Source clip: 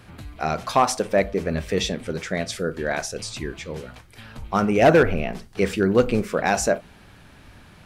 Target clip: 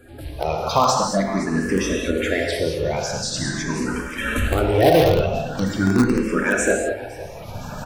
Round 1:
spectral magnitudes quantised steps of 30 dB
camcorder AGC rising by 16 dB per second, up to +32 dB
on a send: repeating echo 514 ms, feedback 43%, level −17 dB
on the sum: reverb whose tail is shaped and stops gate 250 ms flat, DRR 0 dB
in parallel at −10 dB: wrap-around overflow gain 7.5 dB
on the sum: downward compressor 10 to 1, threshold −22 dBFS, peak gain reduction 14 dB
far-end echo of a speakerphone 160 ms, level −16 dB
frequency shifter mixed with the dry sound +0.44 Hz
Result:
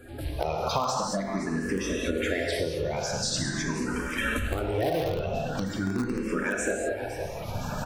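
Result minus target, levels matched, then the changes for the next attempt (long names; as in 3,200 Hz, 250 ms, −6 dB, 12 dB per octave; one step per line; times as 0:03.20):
downward compressor: peak gain reduction +14 dB
remove: downward compressor 10 to 1, threshold −22 dBFS, peak gain reduction 14 dB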